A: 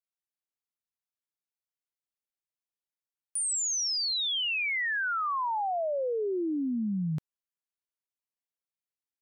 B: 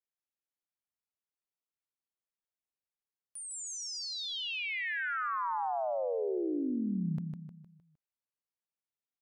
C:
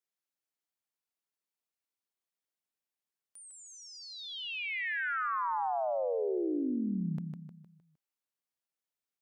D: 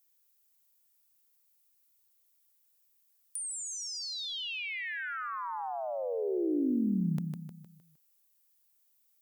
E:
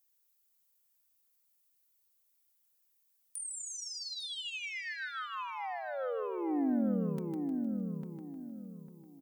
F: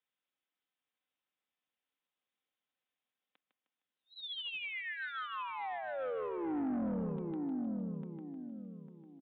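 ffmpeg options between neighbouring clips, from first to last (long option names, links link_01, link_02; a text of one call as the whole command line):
ffmpeg -i in.wav -af "highshelf=frequency=3200:gain=-10,aecho=1:1:154|308|462|616|770:0.562|0.242|0.104|0.0447|0.0192,volume=-4dB" out.wav
ffmpeg -i in.wav -filter_complex "[0:a]highpass=150,acrossover=split=3100[link_01][link_02];[link_02]acompressor=threshold=-53dB:ratio=4:attack=1:release=60[link_03];[link_01][link_03]amix=inputs=2:normalize=0,volume=1dB" out.wav
ffmpeg -i in.wav -filter_complex "[0:a]aemphasis=mode=production:type=75fm,acrossover=split=360[link_01][link_02];[link_02]acompressor=threshold=-40dB:ratio=6[link_03];[link_01][link_03]amix=inputs=2:normalize=0,volume=4.5dB" out.wav
ffmpeg -i in.wav -filter_complex "[0:a]aecho=1:1:3.9:0.46,asplit=2[link_01][link_02];[link_02]adelay=850,lowpass=frequency=1600:poles=1,volume=-4dB,asplit=2[link_03][link_04];[link_04]adelay=850,lowpass=frequency=1600:poles=1,volume=0.31,asplit=2[link_05][link_06];[link_06]adelay=850,lowpass=frequency=1600:poles=1,volume=0.31,asplit=2[link_07][link_08];[link_08]adelay=850,lowpass=frequency=1600:poles=1,volume=0.31[link_09];[link_03][link_05][link_07][link_09]amix=inputs=4:normalize=0[link_10];[link_01][link_10]amix=inputs=2:normalize=0,volume=-4dB" out.wav
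ffmpeg -i in.wav -af "highpass=130,aresample=8000,asoftclip=type=tanh:threshold=-31dB,aresample=44100" out.wav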